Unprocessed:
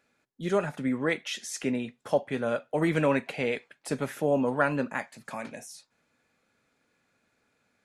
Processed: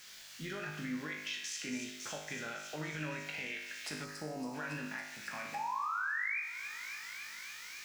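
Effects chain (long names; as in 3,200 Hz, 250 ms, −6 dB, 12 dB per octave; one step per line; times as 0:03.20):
adaptive Wiener filter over 9 samples
in parallel at −4 dB: bit-depth reduction 8 bits, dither triangular
on the sum: sound drawn into the spectrogram rise, 0:05.54–0:06.40, 800–2,500 Hz −19 dBFS
flat-topped bell 3,100 Hz +12.5 dB 2.6 octaves
brickwall limiter −15 dBFS, peak gain reduction 15.5 dB
delay with a high-pass on its return 278 ms, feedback 78%, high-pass 4,000 Hz, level −6 dB
downward compressor 3 to 1, threshold −31 dBFS, peak gain reduction 10 dB
dynamic equaliser 510 Hz, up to −5 dB, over −50 dBFS, Q 2.2
tuned comb filter 51 Hz, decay 0.92 s, harmonics all, mix 90%
gain on a spectral selection 0:04.05–0:04.54, 1,300–3,900 Hz −10 dB
level +3 dB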